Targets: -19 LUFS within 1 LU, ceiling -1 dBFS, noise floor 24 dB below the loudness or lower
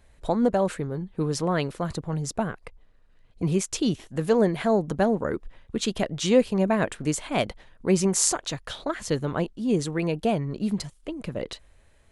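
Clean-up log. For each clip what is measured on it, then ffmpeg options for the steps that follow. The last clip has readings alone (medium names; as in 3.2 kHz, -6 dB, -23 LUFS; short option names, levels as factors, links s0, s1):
loudness -26.0 LUFS; peak level -3.5 dBFS; loudness target -19.0 LUFS
-> -af "volume=2.24,alimiter=limit=0.891:level=0:latency=1"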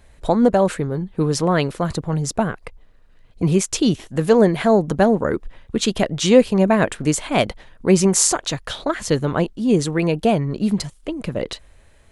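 loudness -19.5 LUFS; peak level -1.0 dBFS; noise floor -51 dBFS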